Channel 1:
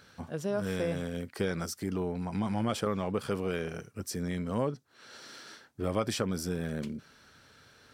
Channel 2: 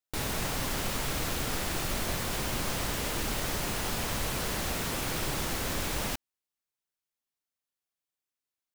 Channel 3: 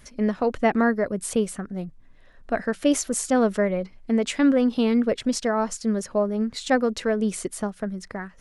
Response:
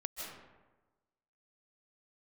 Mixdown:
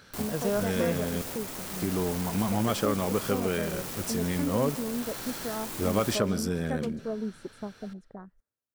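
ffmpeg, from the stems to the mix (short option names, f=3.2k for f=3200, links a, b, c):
-filter_complex "[0:a]volume=2.5dB,asplit=3[a][b][c];[a]atrim=end=1.22,asetpts=PTS-STARTPTS,afade=t=out:st=1.216:d=0.004:c=hsin[d];[b]atrim=start=1.22:end=1.74,asetpts=PTS-STARTPTS,volume=0[e];[c]atrim=start=1.74,asetpts=PTS-STARTPTS,afade=t=in:d=0.004:c=hsin[f];[d][e][f]concat=n=3:v=0:a=1,asplit=2[g][h];[h]volume=-15.5dB[i];[1:a]highpass=84,equalizer=f=240:t=o:w=2.8:g=7.5,aeval=exprs='(mod(20*val(0)+1,2)-1)/20':c=same,volume=-6.5dB,asplit=2[j][k];[k]volume=-11dB[l];[2:a]afwtdn=0.0282,volume=-9.5dB[m];[j][m]amix=inputs=2:normalize=0,equalizer=f=3k:t=o:w=2.1:g=-6,alimiter=limit=-23.5dB:level=0:latency=1:release=300,volume=0dB[n];[3:a]atrim=start_sample=2205[o];[i][l]amix=inputs=2:normalize=0[p];[p][o]afir=irnorm=-1:irlink=0[q];[g][n][q]amix=inputs=3:normalize=0"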